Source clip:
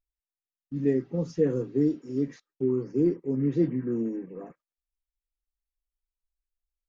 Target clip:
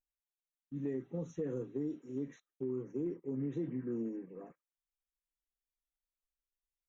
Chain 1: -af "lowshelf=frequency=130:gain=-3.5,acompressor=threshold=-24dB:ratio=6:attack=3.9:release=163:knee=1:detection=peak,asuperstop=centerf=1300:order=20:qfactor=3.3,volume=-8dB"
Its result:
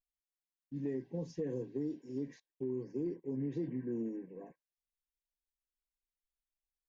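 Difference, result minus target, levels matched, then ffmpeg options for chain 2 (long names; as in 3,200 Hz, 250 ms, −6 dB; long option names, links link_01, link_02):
4,000 Hz band +5.0 dB
-af "lowshelf=frequency=130:gain=-3.5,acompressor=threshold=-24dB:ratio=6:attack=3.9:release=163:knee=1:detection=peak,asuperstop=centerf=4800:order=20:qfactor=3.3,volume=-8dB"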